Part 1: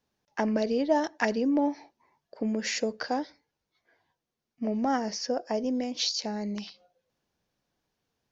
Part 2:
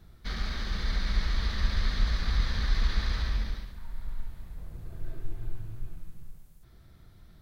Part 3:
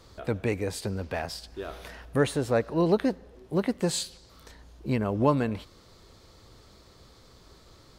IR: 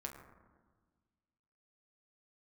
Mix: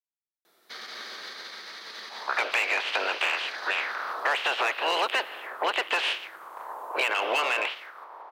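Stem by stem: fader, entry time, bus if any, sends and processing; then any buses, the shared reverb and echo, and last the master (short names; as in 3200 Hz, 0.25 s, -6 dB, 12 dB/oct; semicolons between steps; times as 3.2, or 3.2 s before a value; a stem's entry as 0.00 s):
off
+1.5 dB, 0.45 s, no bus, no send, echo send -3.5 dB, limiter -23 dBFS, peak gain reduction 9 dB; compressor, threshold -31 dBFS, peak gain reduction 6.5 dB
-4.0 dB, 2.10 s, bus A, no send, no echo send, spectral limiter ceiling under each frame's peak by 26 dB; envelope low-pass 790–2900 Hz up, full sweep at -31.5 dBFS
bus A: 0.0 dB, overdrive pedal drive 22 dB, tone 1800 Hz, clips at -7.5 dBFS; compressor 4:1, threshold -24 dBFS, peak gain reduction 8 dB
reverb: off
echo: feedback echo 0.175 s, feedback 40%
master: HPF 380 Hz 24 dB/oct; high shelf 5600 Hz +4.5 dB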